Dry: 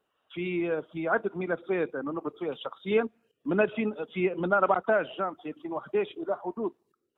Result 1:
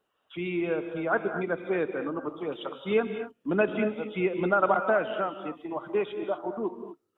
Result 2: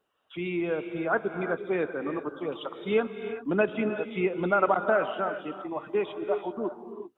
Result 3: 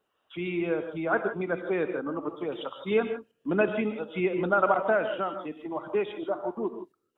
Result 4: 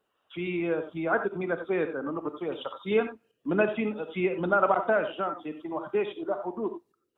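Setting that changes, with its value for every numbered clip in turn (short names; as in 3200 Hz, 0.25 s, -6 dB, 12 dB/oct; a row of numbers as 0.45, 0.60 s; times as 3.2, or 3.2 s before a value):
non-linear reverb, gate: 0.27, 0.41, 0.18, 0.11 s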